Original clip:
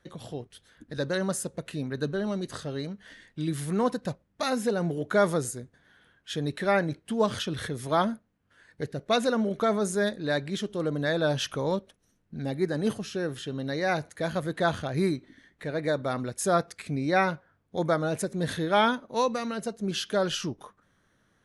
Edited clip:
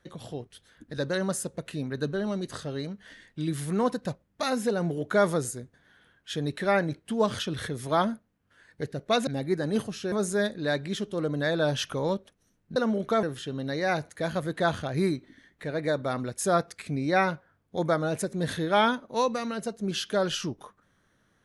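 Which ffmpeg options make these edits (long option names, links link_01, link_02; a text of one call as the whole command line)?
ffmpeg -i in.wav -filter_complex "[0:a]asplit=5[link_01][link_02][link_03][link_04][link_05];[link_01]atrim=end=9.272[link_06];[link_02]atrim=start=12.378:end=13.232[link_07];[link_03]atrim=start=9.738:end=12.382[link_08];[link_04]atrim=start=9.268:end=9.742[link_09];[link_05]atrim=start=13.228[link_10];[link_06][link_07]acrossfade=duration=0.004:curve1=hsin:curve2=hsin[link_11];[link_11][link_08]acrossfade=duration=0.004:curve1=hsin:curve2=hsin[link_12];[link_12][link_09]acrossfade=duration=0.004:curve1=hsin:curve2=hsin[link_13];[link_13][link_10]acrossfade=duration=0.004:curve1=hsin:curve2=hsin" out.wav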